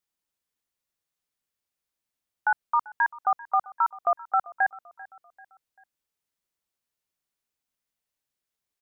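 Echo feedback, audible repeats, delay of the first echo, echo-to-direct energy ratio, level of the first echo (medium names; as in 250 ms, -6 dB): 43%, 2, 391 ms, -19.5 dB, -20.5 dB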